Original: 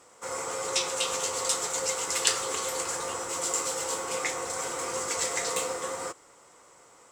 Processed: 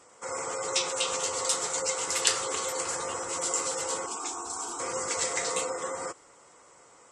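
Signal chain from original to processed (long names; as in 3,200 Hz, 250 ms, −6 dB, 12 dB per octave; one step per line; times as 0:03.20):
gate on every frequency bin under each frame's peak −25 dB strong
0:04.06–0:04.80: phaser with its sweep stopped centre 530 Hz, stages 6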